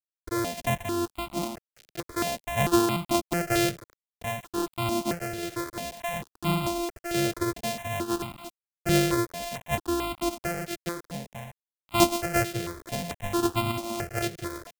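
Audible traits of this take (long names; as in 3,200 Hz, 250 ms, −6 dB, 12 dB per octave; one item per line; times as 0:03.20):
a buzz of ramps at a fixed pitch in blocks of 128 samples
sample-and-hold tremolo
a quantiser's noise floor 8 bits, dither none
notches that jump at a steady rate 4.5 Hz 260–1,700 Hz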